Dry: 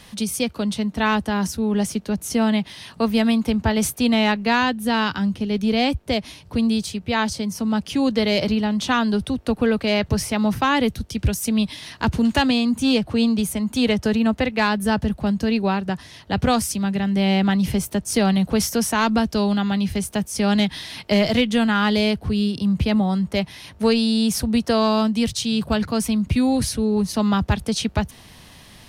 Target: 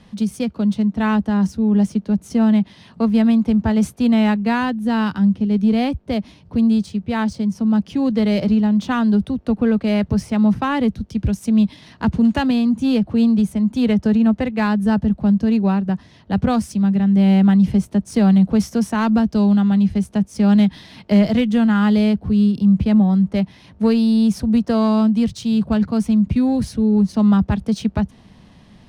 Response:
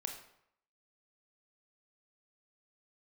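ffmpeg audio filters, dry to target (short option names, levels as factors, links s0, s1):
-filter_complex "[0:a]asplit=2[s0][s1];[s1]adynamicsmooth=sensitivity=0.5:basefreq=1400,volume=0.944[s2];[s0][s2]amix=inputs=2:normalize=0,equalizer=f=200:w=2.4:g=8,adynamicsmooth=sensitivity=4:basefreq=5900,volume=0.447"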